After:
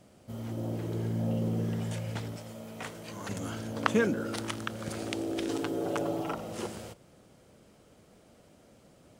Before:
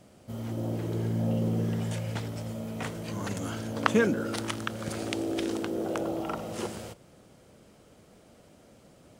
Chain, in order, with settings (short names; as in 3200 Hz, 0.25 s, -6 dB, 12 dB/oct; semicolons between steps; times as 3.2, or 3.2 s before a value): 2.36–3.29 low shelf 320 Hz -9 dB; 5.48–6.33 comb 7 ms, depth 96%; gain -2.5 dB